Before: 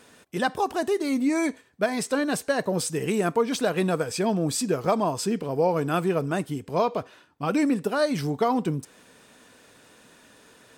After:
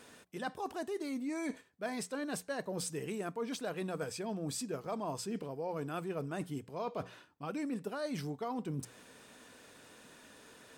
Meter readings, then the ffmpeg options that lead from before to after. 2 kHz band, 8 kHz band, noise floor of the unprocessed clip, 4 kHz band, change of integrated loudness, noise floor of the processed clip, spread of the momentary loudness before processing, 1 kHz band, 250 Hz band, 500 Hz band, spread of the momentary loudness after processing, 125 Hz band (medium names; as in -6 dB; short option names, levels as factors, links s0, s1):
-13.5 dB, -11.0 dB, -55 dBFS, -12.0 dB, -13.5 dB, -60 dBFS, 5 LU, -14.5 dB, -13.5 dB, -14.0 dB, 17 LU, -12.5 dB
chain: -af "bandreject=f=60:t=h:w=6,bandreject=f=120:t=h:w=6,bandreject=f=180:t=h:w=6,areverse,acompressor=threshold=0.0224:ratio=6,areverse,volume=0.708"